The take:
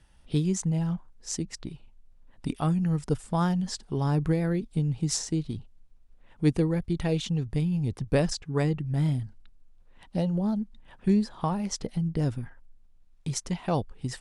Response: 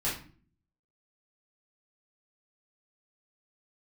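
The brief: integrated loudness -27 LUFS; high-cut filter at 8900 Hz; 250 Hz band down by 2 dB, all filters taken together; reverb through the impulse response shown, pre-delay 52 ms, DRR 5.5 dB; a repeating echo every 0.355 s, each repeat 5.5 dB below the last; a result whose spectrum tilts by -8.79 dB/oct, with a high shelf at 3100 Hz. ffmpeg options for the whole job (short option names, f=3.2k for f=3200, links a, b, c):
-filter_complex "[0:a]lowpass=8.9k,equalizer=f=250:t=o:g=-3.5,highshelf=f=3.1k:g=-9,aecho=1:1:355|710|1065|1420|1775|2130|2485:0.531|0.281|0.149|0.079|0.0419|0.0222|0.0118,asplit=2[a][b];[1:a]atrim=start_sample=2205,adelay=52[c];[b][c]afir=irnorm=-1:irlink=0,volume=-12.5dB[d];[a][d]amix=inputs=2:normalize=0"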